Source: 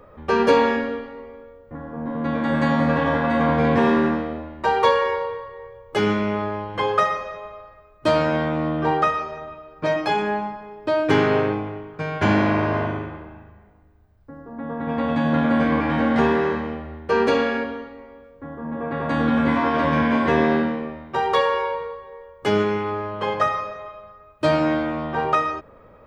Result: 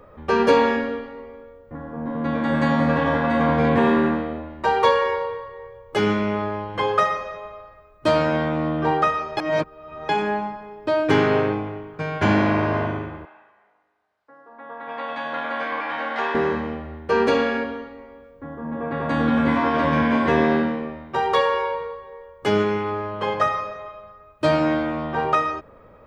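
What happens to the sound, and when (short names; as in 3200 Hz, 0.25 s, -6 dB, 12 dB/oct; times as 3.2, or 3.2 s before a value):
3.69–4.5 bell 5500 Hz -15 dB 0.21 oct
9.37–10.09 reverse
13.25–16.35 BPF 750–5300 Hz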